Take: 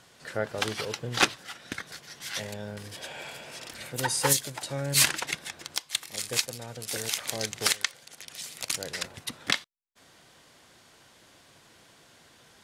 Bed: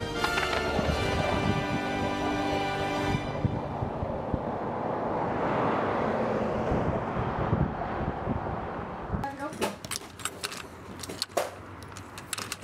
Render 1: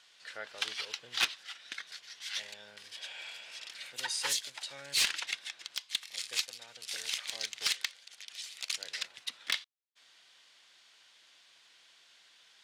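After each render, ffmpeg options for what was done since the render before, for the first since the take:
-af "bandpass=f=3400:t=q:w=1.1:csg=0,asoftclip=type=tanh:threshold=0.106"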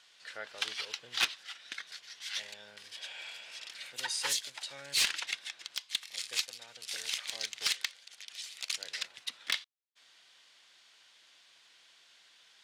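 -af anull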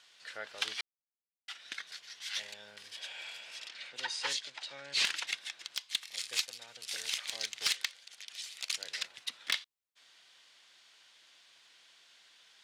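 -filter_complex "[0:a]asettb=1/sr,asplit=3[s0][s1][s2];[s0]atrim=end=3.694[s3];[s1]atrim=start=3.69:end=5.05,asetpts=PTS-STARTPTS,afade=t=in:d=0.004:c=qsin,afade=t=out:st=1.356:d=0.004:c=qsin,highpass=150,lowpass=5100[s4];[s2]atrim=start=5.046[s5];[s3][s4]acrossfade=d=0.004:c1=hsin:c2=qsin[s6];[s6][s5]acrossfade=d=0.004:c1=qsin:c2=hsin,asplit=3[s7][s8][s9];[s7]atrim=end=0.81,asetpts=PTS-STARTPTS,afade=t=out:st=0.806:d=0.004:c=hsin[s10];[s8]atrim=start=0.81:end=1.48,asetpts=PTS-STARTPTS,volume=0[s11];[s9]atrim=start=1.48,asetpts=PTS-STARTPTS,afade=t=in:d=0.004:c=hsin[s12];[s10][s11][s12]concat=n=3:v=0:a=1"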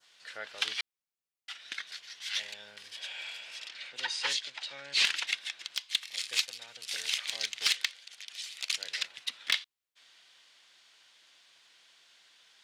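-af "adynamicequalizer=threshold=0.00501:dfrequency=2800:dqfactor=0.73:tfrequency=2800:tqfactor=0.73:attack=5:release=100:ratio=0.375:range=2.5:mode=boostabove:tftype=bell"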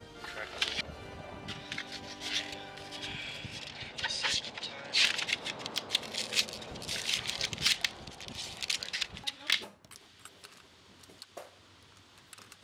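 -filter_complex "[1:a]volume=0.126[s0];[0:a][s0]amix=inputs=2:normalize=0"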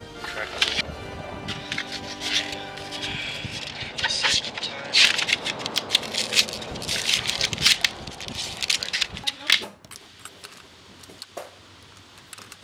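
-af "volume=3.16"

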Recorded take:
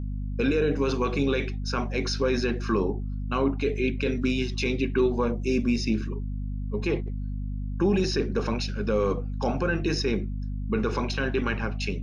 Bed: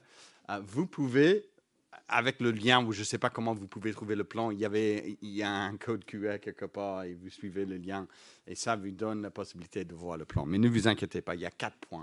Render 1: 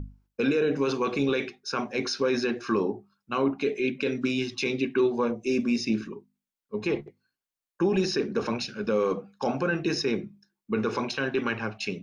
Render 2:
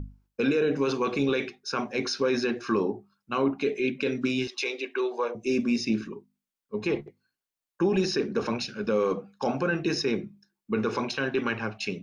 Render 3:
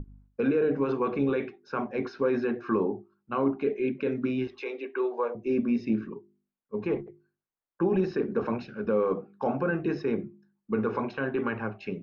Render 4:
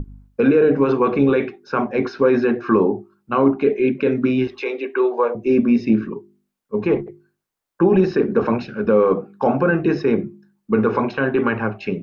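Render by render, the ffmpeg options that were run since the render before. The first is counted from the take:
-af "bandreject=f=50:t=h:w=6,bandreject=f=100:t=h:w=6,bandreject=f=150:t=h:w=6,bandreject=f=200:t=h:w=6,bandreject=f=250:t=h:w=6"
-filter_complex "[0:a]asettb=1/sr,asplit=3[s0][s1][s2];[s0]atrim=end=4.474[s3];[s1]atrim=start=4.47:end=5.35,asetpts=PTS-STARTPTS,afade=t=in:d=0.004:c=qsin,afade=t=out:st=0.876:d=0.004:c=qsin,highpass=f=420:w=0.5412,highpass=f=420:w=1.3066[s4];[s2]atrim=start=5.346[s5];[s3][s4]acrossfade=d=0.004:c1=hsin:c2=qsin[s6];[s6][s5]acrossfade=d=0.004:c1=qsin:c2=hsin"
-af "lowpass=1500,bandreject=f=50:t=h:w=6,bandreject=f=100:t=h:w=6,bandreject=f=150:t=h:w=6,bandreject=f=200:t=h:w=6,bandreject=f=250:t=h:w=6,bandreject=f=300:t=h:w=6,bandreject=f=350:t=h:w=6,bandreject=f=400:t=h:w=6"
-af "volume=3.35"

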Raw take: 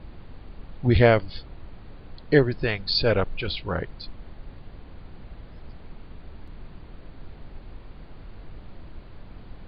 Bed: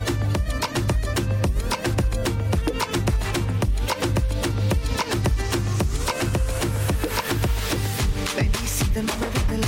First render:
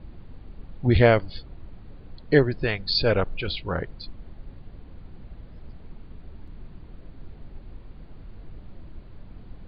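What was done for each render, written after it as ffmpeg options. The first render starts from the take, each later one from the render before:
-af "afftdn=nr=6:nf=-45"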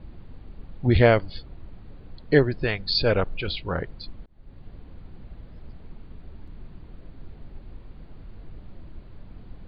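-filter_complex "[0:a]asplit=2[s0][s1];[s0]atrim=end=4.26,asetpts=PTS-STARTPTS,afade=t=out:st=4.256:d=0.004:c=hsin[s2];[s1]atrim=start=4.26,asetpts=PTS-STARTPTS,afade=t=in:d=0.41[s3];[s2][s3]concat=n=2:v=0:a=1"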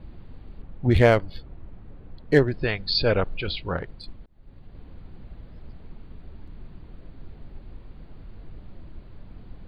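-filter_complex "[0:a]asettb=1/sr,asplit=3[s0][s1][s2];[s0]atrim=end=0.624[s3];[s1]atrim=start=0.62:end=2.54,asetpts=PTS-STARTPTS,afade=t=in:d=0.004:c=qsin,afade=t=out:st=1.916:d=0.004:c=qsin,adynamicsmooth=sensitivity=4:basefreq=3200[s4];[s2]atrim=start=2.536[s5];[s3][s4]acrossfade=d=0.004:c1=hsin:c2=qsin[s6];[s6][s5]acrossfade=d=0.004:c1=qsin:c2=hsin,asettb=1/sr,asplit=3[s7][s8][s9];[s7]atrim=end=3.774[s10];[s8]atrim=start=3.77:end=4.75,asetpts=PTS-STARTPTS,afade=t=in:d=0.004:c=qsin,afade=t=out:st=0.976:d=0.004:c=qsin,aeval=exprs='(tanh(11.2*val(0)+0.5)-tanh(0.5))/11.2':c=same[s11];[s9]atrim=start=4.746[s12];[s10][s11]acrossfade=d=0.004:c1=hsin:c2=qsin[s13];[s13][s12]acrossfade=d=0.004:c1=qsin:c2=hsin"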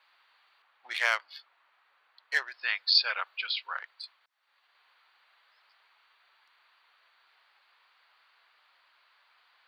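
-af "highpass=f=1100:w=0.5412,highpass=f=1100:w=1.3066,equalizer=f=5500:w=4.6:g=8"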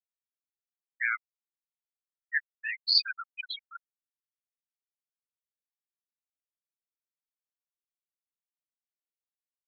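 -af "highpass=950,afftfilt=real='re*gte(hypot(re,im),0.126)':imag='im*gte(hypot(re,im),0.126)':win_size=1024:overlap=0.75"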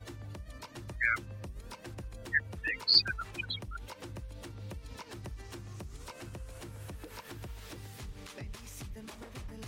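-filter_complex "[1:a]volume=0.0794[s0];[0:a][s0]amix=inputs=2:normalize=0"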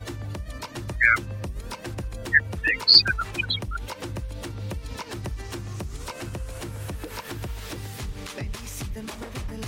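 -af "volume=3.55,alimiter=limit=0.708:level=0:latency=1"

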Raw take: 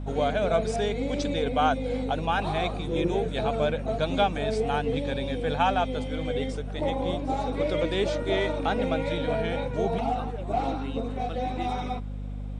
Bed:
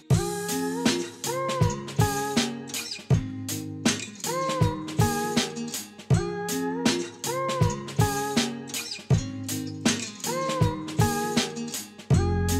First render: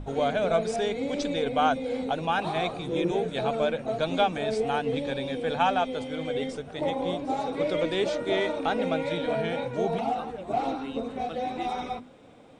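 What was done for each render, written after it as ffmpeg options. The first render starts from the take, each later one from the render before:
-af "bandreject=f=50:t=h:w=6,bandreject=f=100:t=h:w=6,bandreject=f=150:t=h:w=6,bandreject=f=200:t=h:w=6,bandreject=f=250:t=h:w=6"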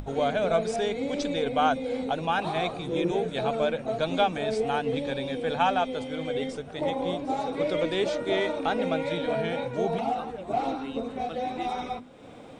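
-af "acompressor=mode=upward:threshold=0.0141:ratio=2.5"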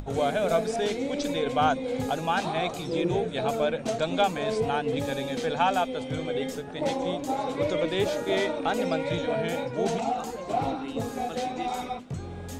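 -filter_complex "[1:a]volume=0.2[s0];[0:a][s0]amix=inputs=2:normalize=0"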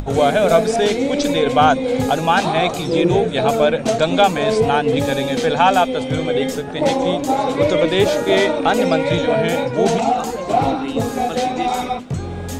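-af "volume=3.55,alimiter=limit=0.794:level=0:latency=1"

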